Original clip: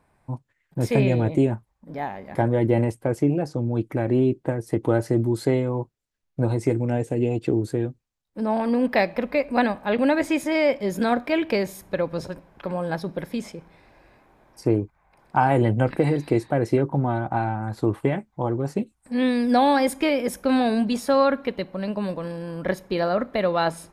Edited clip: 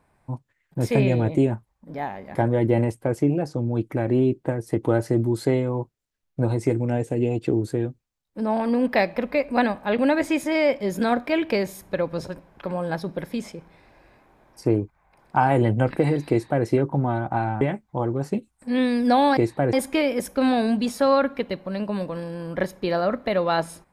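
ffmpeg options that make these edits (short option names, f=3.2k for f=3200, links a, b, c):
-filter_complex "[0:a]asplit=4[a][b][c][d];[a]atrim=end=17.612[e];[b]atrim=start=18.048:end=19.812[f];[c]atrim=start=16.298:end=16.662[g];[d]atrim=start=19.808[h];[e][f]acrossfade=d=0.004:c1=hsin:c2=hsin[i];[i][g]acrossfade=d=0.004:c1=hsin:c2=hsin[j];[j][h]acrossfade=d=0.004:c1=hsin:c2=hsin"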